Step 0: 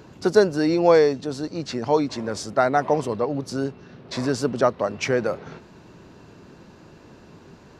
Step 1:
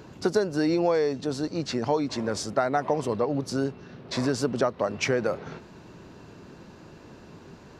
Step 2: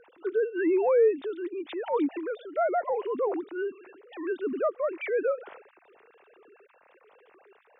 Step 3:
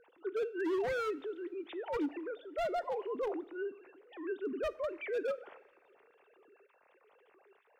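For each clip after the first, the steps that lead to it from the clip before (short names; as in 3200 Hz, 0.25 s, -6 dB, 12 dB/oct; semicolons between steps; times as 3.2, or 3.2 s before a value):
compressor 6:1, threshold -20 dBFS, peak gain reduction 10 dB
sine-wave speech; transient shaper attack -6 dB, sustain +3 dB
wavefolder -21.5 dBFS; reverb, pre-delay 3 ms, DRR 16 dB; gain -7.5 dB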